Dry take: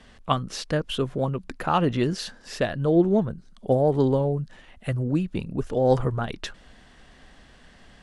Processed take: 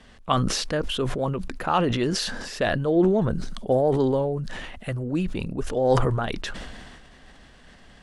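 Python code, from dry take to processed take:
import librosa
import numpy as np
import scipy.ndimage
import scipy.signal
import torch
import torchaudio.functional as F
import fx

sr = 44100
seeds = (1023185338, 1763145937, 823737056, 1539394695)

y = fx.dynamic_eq(x, sr, hz=150.0, q=1.0, threshold_db=-36.0, ratio=4.0, max_db=-6)
y = fx.sustainer(y, sr, db_per_s=31.0)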